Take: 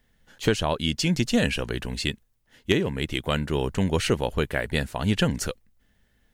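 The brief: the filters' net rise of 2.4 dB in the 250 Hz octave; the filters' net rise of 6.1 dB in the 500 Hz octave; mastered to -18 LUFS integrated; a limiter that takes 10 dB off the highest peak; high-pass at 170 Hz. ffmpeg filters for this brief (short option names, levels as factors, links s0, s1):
-af "highpass=170,equalizer=f=250:t=o:g=3,equalizer=f=500:t=o:g=6.5,volume=2.51,alimiter=limit=0.596:level=0:latency=1"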